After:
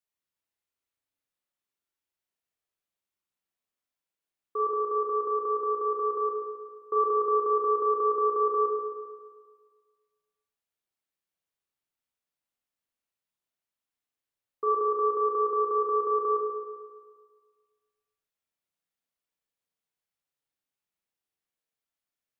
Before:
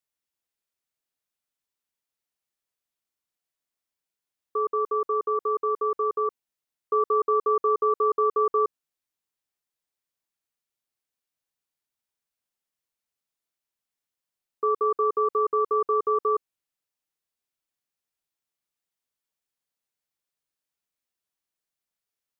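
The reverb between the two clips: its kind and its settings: spring tank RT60 1.6 s, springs 33/44 ms, chirp 25 ms, DRR -1.5 dB; trim -5 dB

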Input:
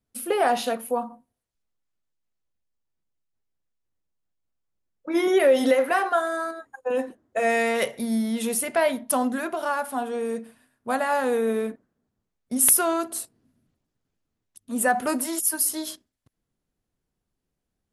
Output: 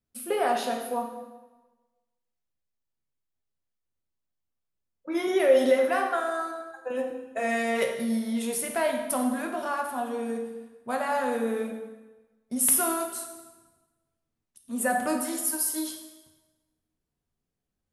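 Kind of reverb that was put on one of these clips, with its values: plate-style reverb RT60 1.2 s, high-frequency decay 0.85×, DRR 2.5 dB; trim -5.5 dB

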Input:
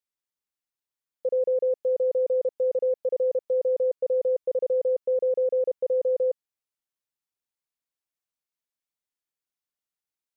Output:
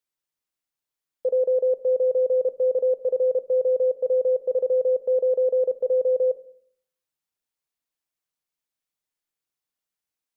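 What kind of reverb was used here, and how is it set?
simulated room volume 800 m³, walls furnished, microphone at 0.53 m; trim +2.5 dB

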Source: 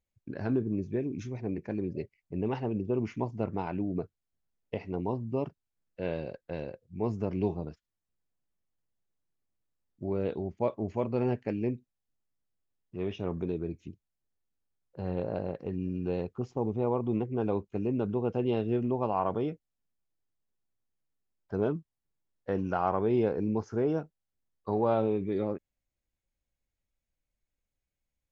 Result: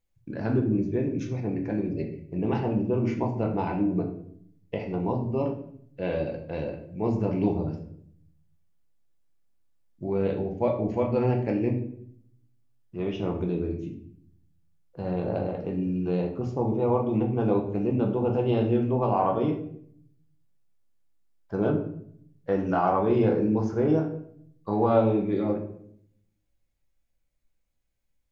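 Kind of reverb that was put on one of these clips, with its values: simulated room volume 120 m³, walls mixed, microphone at 0.72 m; trim +2.5 dB

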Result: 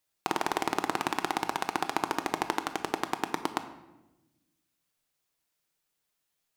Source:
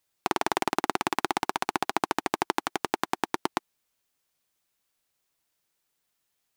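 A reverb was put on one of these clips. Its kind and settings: simulated room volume 460 m³, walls mixed, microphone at 0.5 m; trim -3 dB

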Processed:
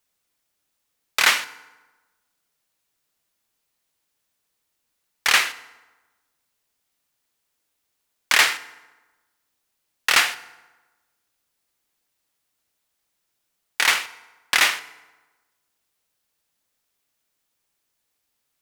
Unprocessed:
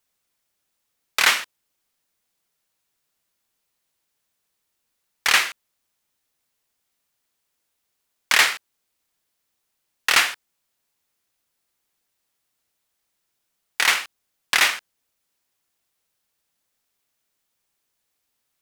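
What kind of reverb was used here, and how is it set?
FDN reverb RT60 1.2 s, low-frequency decay 1×, high-frequency decay 0.65×, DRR 14 dB

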